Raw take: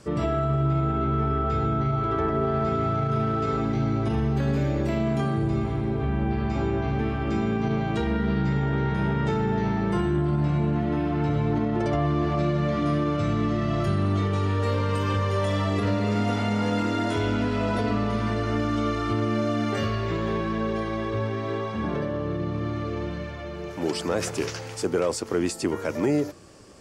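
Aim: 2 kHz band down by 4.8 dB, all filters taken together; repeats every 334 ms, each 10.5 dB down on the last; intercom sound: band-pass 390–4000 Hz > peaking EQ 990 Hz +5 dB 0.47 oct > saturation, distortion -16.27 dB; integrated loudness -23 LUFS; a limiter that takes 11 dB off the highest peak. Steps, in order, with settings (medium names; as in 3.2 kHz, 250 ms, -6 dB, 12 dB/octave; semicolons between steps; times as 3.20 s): peaking EQ 2 kHz -6.5 dB; peak limiter -23.5 dBFS; band-pass 390–4000 Hz; peaking EQ 990 Hz +5 dB 0.47 oct; feedback delay 334 ms, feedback 30%, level -10.5 dB; saturation -30.5 dBFS; trim +14.5 dB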